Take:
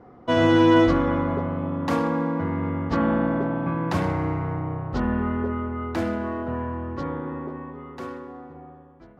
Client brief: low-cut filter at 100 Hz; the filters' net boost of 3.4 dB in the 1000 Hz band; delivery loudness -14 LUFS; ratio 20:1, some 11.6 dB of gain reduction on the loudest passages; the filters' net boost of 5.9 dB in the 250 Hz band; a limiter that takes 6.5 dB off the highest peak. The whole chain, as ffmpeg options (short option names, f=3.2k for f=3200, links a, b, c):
-af "highpass=100,equalizer=f=250:t=o:g=7.5,equalizer=f=1k:t=o:g=3.5,acompressor=threshold=-20dB:ratio=20,volume=14dB,alimiter=limit=-5dB:level=0:latency=1"